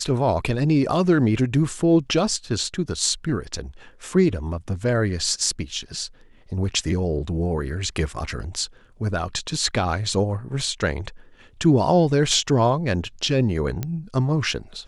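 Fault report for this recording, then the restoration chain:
13.83 pop -13 dBFS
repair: de-click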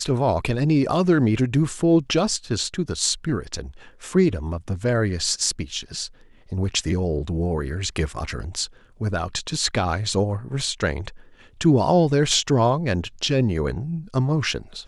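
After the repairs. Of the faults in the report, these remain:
none

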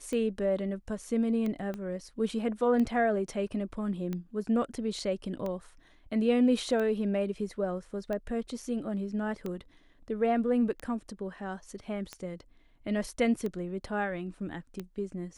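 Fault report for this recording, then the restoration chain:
tick 45 rpm -23 dBFS
1.74 pop -25 dBFS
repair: de-click

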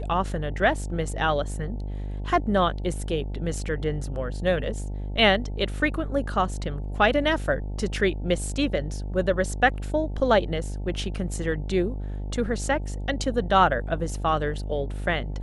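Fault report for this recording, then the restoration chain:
buzz 50 Hz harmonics 18 -31 dBFS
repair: de-hum 50 Hz, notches 18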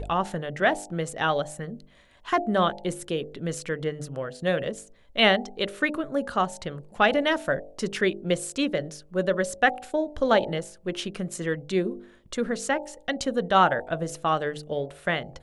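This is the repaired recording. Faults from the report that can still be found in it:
none

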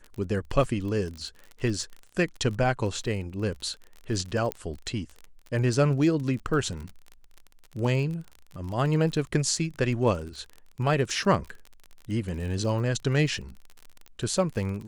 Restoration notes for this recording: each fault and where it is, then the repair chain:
crackle 37/s -34 dBFS
4.52 pop -13 dBFS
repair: de-click

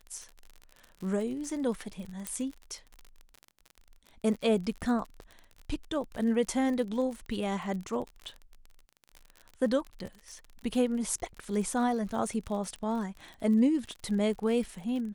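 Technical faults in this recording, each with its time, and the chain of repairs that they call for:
crackle 45/s -37 dBFS
2.27 pop -17 dBFS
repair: de-click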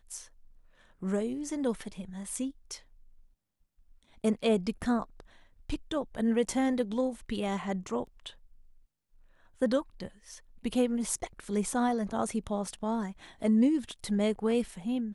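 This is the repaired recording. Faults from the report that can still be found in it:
2.27 pop

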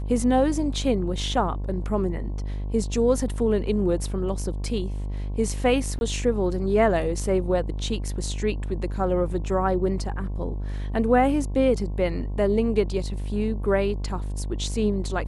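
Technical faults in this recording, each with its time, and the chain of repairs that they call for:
buzz 50 Hz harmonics 22 -29 dBFS
5.99–6.01 gap 21 ms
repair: de-hum 50 Hz, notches 22; interpolate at 5.99, 21 ms

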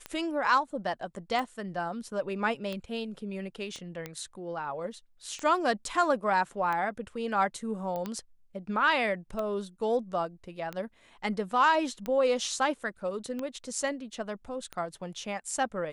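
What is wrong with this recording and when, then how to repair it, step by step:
tick 45 rpm -21 dBFS
3.76 pop -29 dBFS
7.96 pop -23 dBFS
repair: de-click

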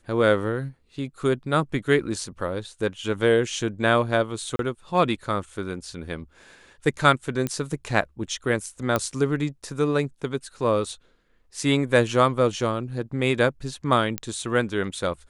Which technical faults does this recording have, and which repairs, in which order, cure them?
4.56–4.59 gap 32 ms
7.47 pop -12 dBFS
8.96 pop -9 dBFS
14.18 pop -10 dBFS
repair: de-click; interpolate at 4.56, 32 ms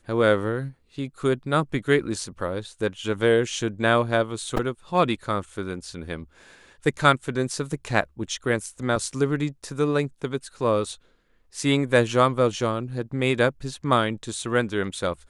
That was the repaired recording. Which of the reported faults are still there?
none

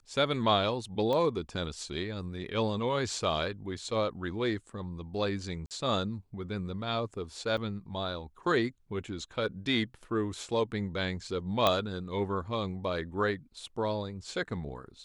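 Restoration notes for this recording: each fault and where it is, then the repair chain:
1.13 pop -20 dBFS
5.66–5.71 gap 48 ms
7.57–7.58 gap 6.6 ms
11.67 pop -10 dBFS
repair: de-click; interpolate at 5.66, 48 ms; interpolate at 7.57, 6.6 ms

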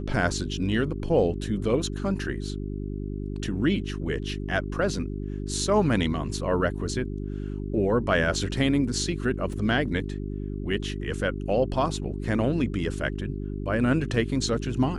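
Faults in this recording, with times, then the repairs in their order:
hum 50 Hz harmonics 8 -32 dBFS
9.53 gap 2.2 ms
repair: de-hum 50 Hz, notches 8; interpolate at 9.53, 2.2 ms

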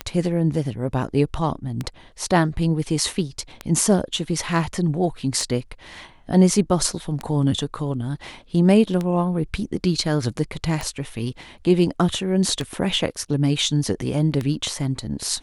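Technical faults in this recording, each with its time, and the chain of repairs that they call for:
tick 33 1/3 rpm -12 dBFS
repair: de-click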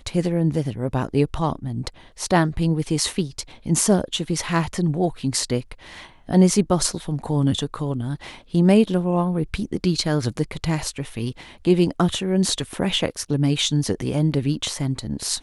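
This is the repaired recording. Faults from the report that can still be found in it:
none

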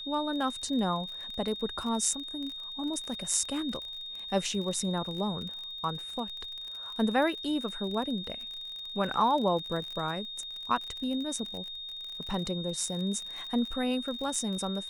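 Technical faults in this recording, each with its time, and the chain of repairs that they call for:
crackle 40/s -36 dBFS
tone 3700 Hz -38 dBFS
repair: de-click; notch 3700 Hz, Q 30

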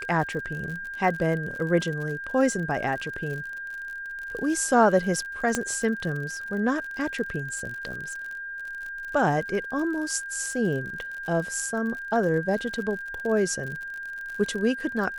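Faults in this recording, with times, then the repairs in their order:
crackle 53/s -33 dBFS
tone 1600 Hz -33 dBFS
5.55 pop -10 dBFS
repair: de-click; notch 1600 Hz, Q 30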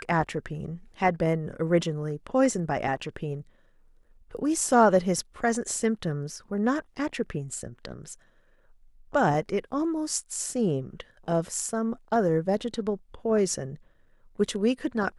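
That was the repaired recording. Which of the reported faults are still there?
5.55 pop

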